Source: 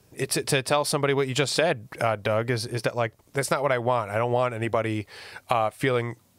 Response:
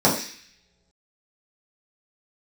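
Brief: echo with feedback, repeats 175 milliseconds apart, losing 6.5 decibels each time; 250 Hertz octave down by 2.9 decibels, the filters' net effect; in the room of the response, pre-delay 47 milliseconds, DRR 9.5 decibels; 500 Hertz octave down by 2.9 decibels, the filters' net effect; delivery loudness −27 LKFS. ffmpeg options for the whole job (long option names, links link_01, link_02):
-filter_complex "[0:a]equalizer=frequency=250:width_type=o:gain=-3,equalizer=frequency=500:width_type=o:gain=-3,aecho=1:1:175|350|525|700|875|1050:0.473|0.222|0.105|0.0491|0.0231|0.0109,asplit=2[link_01][link_02];[1:a]atrim=start_sample=2205,adelay=47[link_03];[link_02][link_03]afir=irnorm=-1:irlink=0,volume=-29dB[link_04];[link_01][link_04]amix=inputs=2:normalize=0,volume=-2dB"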